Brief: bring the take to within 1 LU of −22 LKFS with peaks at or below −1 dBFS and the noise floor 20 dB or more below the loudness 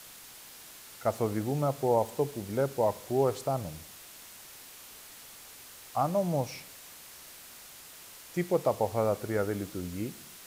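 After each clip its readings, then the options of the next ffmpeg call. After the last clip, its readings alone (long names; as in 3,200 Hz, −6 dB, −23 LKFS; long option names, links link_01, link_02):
background noise floor −50 dBFS; target noise floor −51 dBFS; integrated loudness −31.0 LKFS; sample peak −14.0 dBFS; target loudness −22.0 LKFS
→ -af "afftdn=noise_reduction=6:noise_floor=-50"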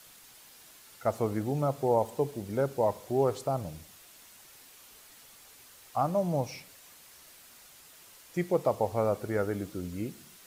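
background noise floor −55 dBFS; integrated loudness −31.0 LKFS; sample peak −14.0 dBFS; target loudness −22.0 LKFS
→ -af "volume=9dB"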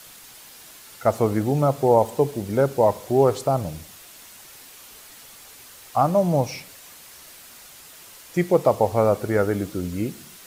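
integrated loudness −22.0 LKFS; sample peak −5.0 dBFS; background noise floor −46 dBFS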